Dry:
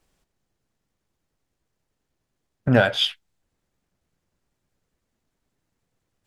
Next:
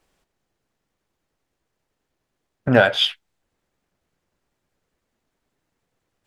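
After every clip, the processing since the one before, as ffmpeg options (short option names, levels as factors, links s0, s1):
-af "bass=f=250:g=-6,treble=f=4000:g=-4,volume=1.58"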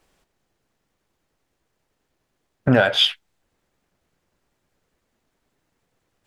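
-af "alimiter=limit=0.376:level=0:latency=1:release=144,volume=1.5"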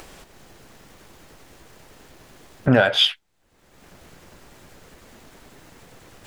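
-af "acompressor=mode=upward:threshold=0.0447:ratio=2.5"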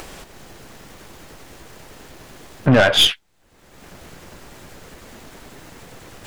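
-af "aeval=exprs='(tanh(6.31*val(0)+0.4)-tanh(0.4))/6.31':c=same,volume=2.51"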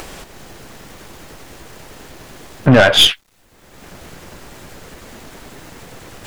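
-af "acrusher=bits=9:mix=0:aa=0.000001,volume=1.58"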